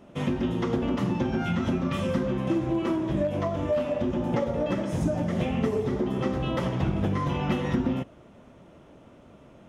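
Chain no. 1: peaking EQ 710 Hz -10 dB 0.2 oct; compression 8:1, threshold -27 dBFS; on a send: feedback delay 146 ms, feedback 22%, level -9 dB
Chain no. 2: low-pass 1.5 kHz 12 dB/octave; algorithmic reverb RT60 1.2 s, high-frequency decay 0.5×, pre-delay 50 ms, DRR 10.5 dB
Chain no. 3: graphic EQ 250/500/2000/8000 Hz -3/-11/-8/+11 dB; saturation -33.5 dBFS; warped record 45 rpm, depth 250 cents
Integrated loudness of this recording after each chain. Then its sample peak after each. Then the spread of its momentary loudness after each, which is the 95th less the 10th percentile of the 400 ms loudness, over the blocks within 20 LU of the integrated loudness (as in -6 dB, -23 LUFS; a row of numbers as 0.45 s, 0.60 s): -31.5 LUFS, -27.5 LUFS, -37.5 LUFS; -18.5 dBFS, -14.0 dBFS, -33.5 dBFS; 2 LU, 2 LU, 20 LU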